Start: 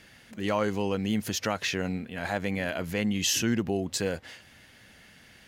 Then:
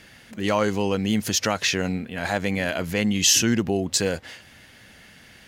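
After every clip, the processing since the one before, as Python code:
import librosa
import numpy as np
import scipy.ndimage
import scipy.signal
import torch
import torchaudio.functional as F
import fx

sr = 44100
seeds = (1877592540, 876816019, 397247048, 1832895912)

y = fx.dynamic_eq(x, sr, hz=6200.0, q=0.75, threshold_db=-46.0, ratio=4.0, max_db=5)
y = y * 10.0 ** (5.0 / 20.0)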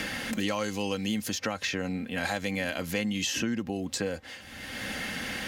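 y = x + 0.4 * np.pad(x, (int(3.8 * sr / 1000.0), 0))[:len(x)]
y = fx.band_squash(y, sr, depth_pct=100)
y = y * 10.0 ** (-8.5 / 20.0)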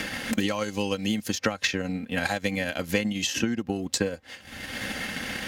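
y = fx.transient(x, sr, attack_db=8, sustain_db=-9)
y = y * 10.0 ** (1.5 / 20.0)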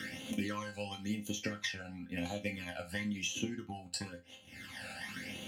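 y = scipy.signal.sosfilt(scipy.signal.butter(2, 88.0, 'highpass', fs=sr, output='sos'), x)
y = fx.phaser_stages(y, sr, stages=12, low_hz=330.0, high_hz=1700.0, hz=0.97, feedback_pct=35)
y = fx.resonator_bank(y, sr, root=41, chord='minor', decay_s=0.25)
y = y * 10.0 ** (2.0 / 20.0)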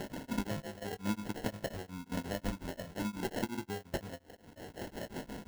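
y = fx.spec_ripple(x, sr, per_octave=1.6, drift_hz=-0.38, depth_db=7)
y = fx.sample_hold(y, sr, seeds[0], rate_hz=1200.0, jitter_pct=0)
y = y * np.abs(np.cos(np.pi * 5.6 * np.arange(len(y)) / sr))
y = y * 10.0 ** (3.5 / 20.0)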